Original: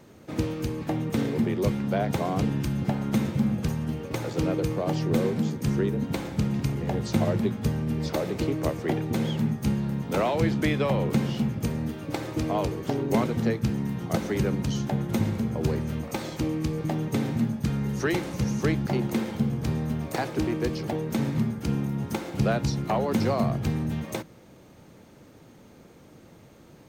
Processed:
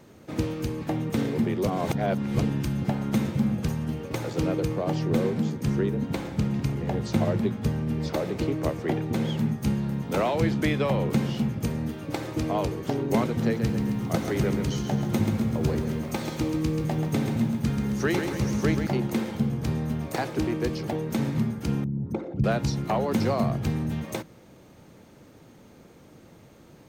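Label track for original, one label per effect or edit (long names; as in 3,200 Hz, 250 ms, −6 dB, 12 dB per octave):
1.670000	2.390000	reverse
4.650000	9.290000	high-shelf EQ 4,900 Hz −4 dB
13.270000	18.870000	feedback echo at a low word length 134 ms, feedback 55%, word length 9 bits, level −7 dB
21.840000	22.440000	spectral envelope exaggerated exponent 2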